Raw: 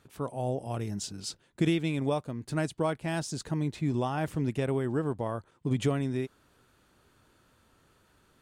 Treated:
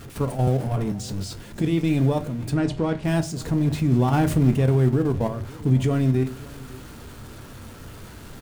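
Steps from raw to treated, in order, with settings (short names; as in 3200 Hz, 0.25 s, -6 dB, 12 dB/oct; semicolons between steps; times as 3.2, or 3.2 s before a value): zero-crossing step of -36 dBFS; 2.5–3.05 LPF 5200 Hz 12 dB/oct; level quantiser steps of 10 dB; echo 0.553 s -21 dB; reverb RT60 0.30 s, pre-delay 4 ms, DRR 7 dB; 4.08–4.54 sample leveller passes 1; low shelf 430 Hz +9 dB; 0.47–0.92 three-band squash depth 100%; gain +3 dB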